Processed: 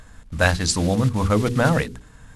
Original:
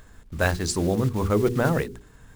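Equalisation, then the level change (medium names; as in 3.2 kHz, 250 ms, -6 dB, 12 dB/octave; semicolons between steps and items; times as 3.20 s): peaking EQ 380 Hz -14 dB 0.27 oct; dynamic bell 3.5 kHz, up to +4 dB, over -42 dBFS, Q 0.89; brick-wall FIR low-pass 12 kHz; +4.5 dB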